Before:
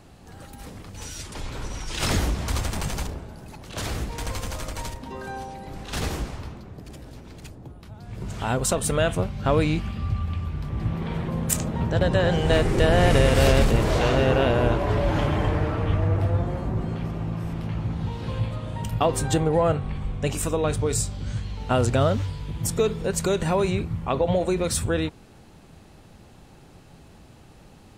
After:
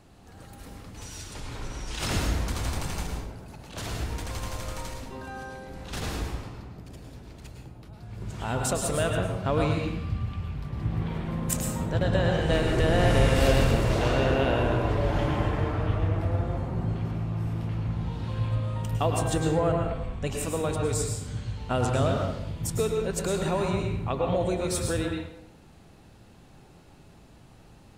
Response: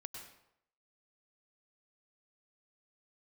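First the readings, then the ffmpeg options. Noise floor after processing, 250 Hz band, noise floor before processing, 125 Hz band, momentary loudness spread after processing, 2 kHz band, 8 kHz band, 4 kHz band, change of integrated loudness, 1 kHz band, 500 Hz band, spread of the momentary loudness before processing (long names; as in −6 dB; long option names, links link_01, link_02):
−52 dBFS, −3.0 dB, −50 dBFS, −2.5 dB, 17 LU, −3.0 dB, −4.0 dB, −3.5 dB, −3.0 dB, −3.0 dB, −4.0 dB, 18 LU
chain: -filter_complex "[1:a]atrim=start_sample=2205,asetrate=41454,aresample=44100[link_01];[0:a][link_01]afir=irnorm=-1:irlink=0"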